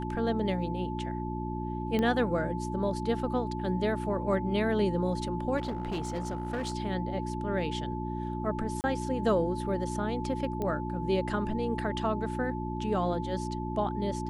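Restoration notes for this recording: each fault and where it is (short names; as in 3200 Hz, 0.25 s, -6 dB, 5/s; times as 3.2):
hum 60 Hz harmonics 6 -35 dBFS
tone 870 Hz -38 dBFS
1.99 pop -18 dBFS
5.57–6.73 clipped -28.5 dBFS
8.81–8.84 gap 29 ms
10.62 pop -21 dBFS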